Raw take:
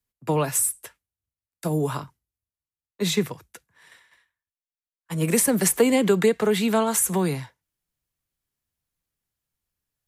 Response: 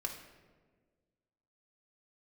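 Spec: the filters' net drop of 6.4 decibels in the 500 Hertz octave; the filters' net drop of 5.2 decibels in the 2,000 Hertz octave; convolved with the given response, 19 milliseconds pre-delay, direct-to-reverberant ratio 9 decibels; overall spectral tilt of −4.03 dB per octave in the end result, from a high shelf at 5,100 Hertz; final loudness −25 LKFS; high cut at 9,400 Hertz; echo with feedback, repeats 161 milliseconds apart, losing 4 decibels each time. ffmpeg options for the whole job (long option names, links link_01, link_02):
-filter_complex "[0:a]lowpass=9400,equalizer=frequency=500:width_type=o:gain=-7.5,equalizer=frequency=2000:width_type=o:gain=-7,highshelf=frequency=5100:gain=6,aecho=1:1:161|322|483|644|805|966|1127|1288|1449:0.631|0.398|0.25|0.158|0.0994|0.0626|0.0394|0.0249|0.0157,asplit=2[link_01][link_02];[1:a]atrim=start_sample=2205,adelay=19[link_03];[link_02][link_03]afir=irnorm=-1:irlink=0,volume=-9.5dB[link_04];[link_01][link_04]amix=inputs=2:normalize=0,volume=-2.5dB"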